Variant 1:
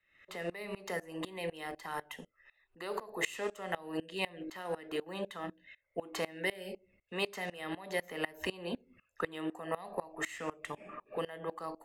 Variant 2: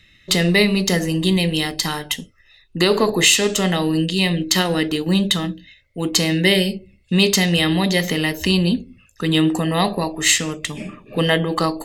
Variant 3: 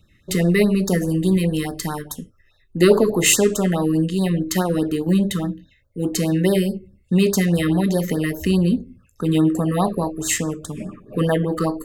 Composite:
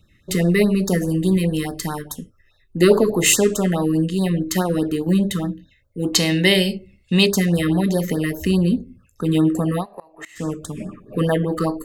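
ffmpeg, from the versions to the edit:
-filter_complex "[2:a]asplit=3[a][b][c];[a]atrim=end=6.132[d];[1:a]atrim=start=6.128:end=7.262[e];[b]atrim=start=7.258:end=9.86[f];[0:a]atrim=start=9.76:end=10.45[g];[c]atrim=start=10.35[h];[d][e]acrossfade=d=0.004:c1=hsin:c2=hsin[i];[i][f]acrossfade=d=0.004:c1=hsin:c2=hsin[j];[j][g]acrossfade=d=0.1:c1=tri:c2=tri[k];[k][h]acrossfade=d=0.1:c1=tri:c2=tri"

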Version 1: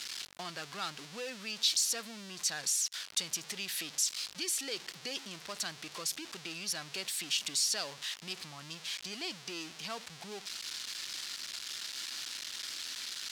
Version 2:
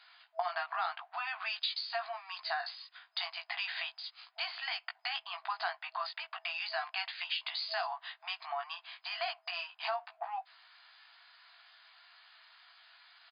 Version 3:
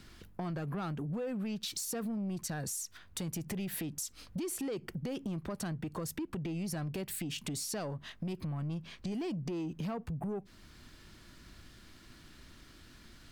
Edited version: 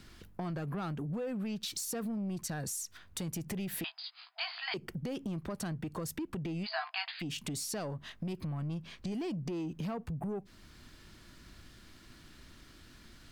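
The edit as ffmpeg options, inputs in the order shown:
-filter_complex "[1:a]asplit=2[a][b];[2:a]asplit=3[c][d][e];[c]atrim=end=3.842[f];[a]atrim=start=3.838:end=4.742[g];[d]atrim=start=4.738:end=6.67[h];[b]atrim=start=6.63:end=7.23[i];[e]atrim=start=7.19[j];[f][g]acrossfade=d=0.004:c1=hsin:c2=hsin[k];[k][h]acrossfade=d=0.004:c1=hsin:c2=hsin[l];[l][i]acrossfade=d=0.04:c1=tri:c2=tri[m];[m][j]acrossfade=d=0.04:c1=tri:c2=tri"

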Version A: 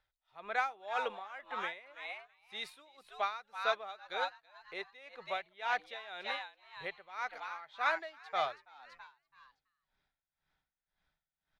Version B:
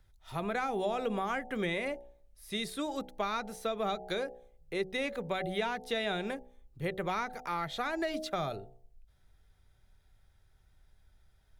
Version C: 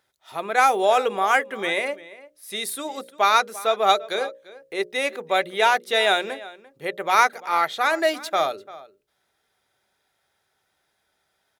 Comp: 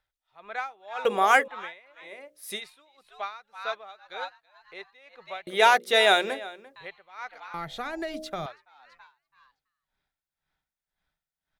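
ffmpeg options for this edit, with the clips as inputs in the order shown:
-filter_complex "[2:a]asplit=3[a][b][c];[0:a]asplit=5[d][e][f][g][h];[d]atrim=end=1.052[i];[a]atrim=start=1.048:end=1.482[j];[e]atrim=start=1.478:end=2.1[k];[b]atrim=start=2:end=2.62[l];[f]atrim=start=2.52:end=5.472[m];[c]atrim=start=5.468:end=6.762[n];[g]atrim=start=6.758:end=7.542[o];[1:a]atrim=start=7.538:end=8.462[p];[h]atrim=start=8.458[q];[i][j]acrossfade=d=0.004:c1=hsin:c2=hsin[r];[r][k]acrossfade=d=0.004:c1=hsin:c2=hsin[s];[s][l]acrossfade=d=0.1:c1=tri:c2=tri[t];[t][m]acrossfade=d=0.1:c1=tri:c2=tri[u];[u][n]acrossfade=d=0.004:c1=hsin:c2=hsin[v];[v][o]acrossfade=d=0.004:c1=hsin:c2=hsin[w];[w][p]acrossfade=d=0.004:c1=hsin:c2=hsin[x];[x][q]acrossfade=d=0.004:c1=hsin:c2=hsin"

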